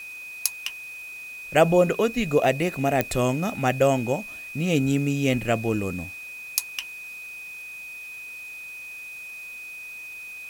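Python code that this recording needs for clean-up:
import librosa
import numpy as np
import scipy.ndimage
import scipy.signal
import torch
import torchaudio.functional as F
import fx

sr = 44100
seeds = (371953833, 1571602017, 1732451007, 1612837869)

y = fx.fix_declick_ar(x, sr, threshold=10.0)
y = fx.notch(y, sr, hz=2500.0, q=30.0)
y = fx.noise_reduce(y, sr, print_start_s=9.87, print_end_s=10.37, reduce_db=30.0)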